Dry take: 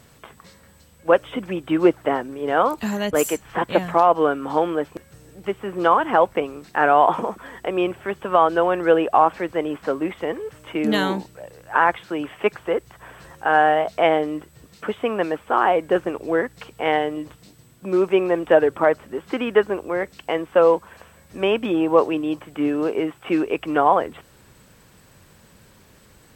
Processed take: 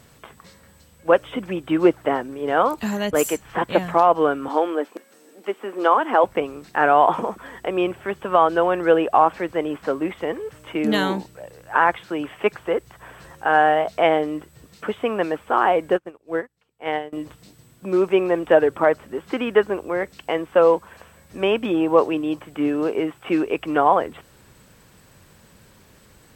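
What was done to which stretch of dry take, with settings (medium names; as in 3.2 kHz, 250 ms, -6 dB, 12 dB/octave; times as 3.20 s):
4.48–6.24 s: Chebyshev high-pass 240 Hz, order 4
15.94–17.13 s: upward expansion 2.5:1, over -34 dBFS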